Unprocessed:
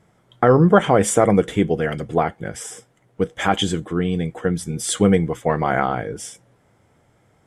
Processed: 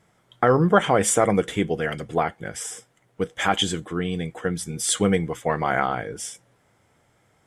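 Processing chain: tilt shelf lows -3.5 dB, about 890 Hz; trim -2.5 dB

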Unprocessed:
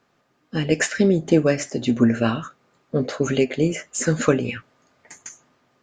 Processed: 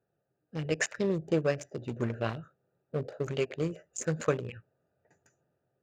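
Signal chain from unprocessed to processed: local Wiener filter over 41 samples; high-pass 63 Hz; peaking EQ 250 Hz -14.5 dB 0.65 oct; trim -6.5 dB

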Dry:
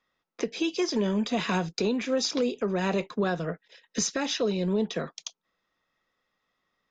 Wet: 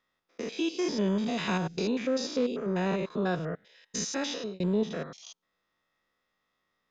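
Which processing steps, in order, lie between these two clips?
spectrogram pixelated in time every 100 ms; 1.90–3.11 s: treble shelf 5.1 kHz -6 dB; 4.16–4.60 s: fade out equal-power

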